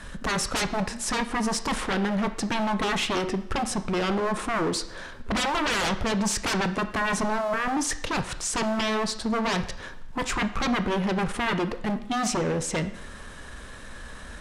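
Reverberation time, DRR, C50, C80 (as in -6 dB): 0.75 s, 9.5 dB, 13.0 dB, 15.5 dB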